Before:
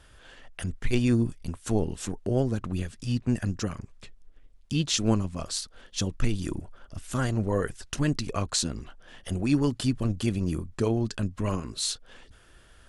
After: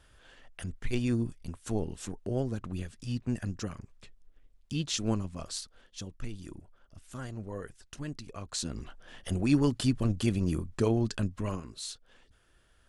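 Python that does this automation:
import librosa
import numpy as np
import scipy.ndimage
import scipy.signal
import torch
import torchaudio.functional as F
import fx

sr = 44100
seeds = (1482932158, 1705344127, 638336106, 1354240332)

y = fx.gain(x, sr, db=fx.line((5.62, -6.0), (6.04, -13.0), (8.41, -13.0), (8.82, -1.0), (11.19, -1.0), (11.83, -10.5)))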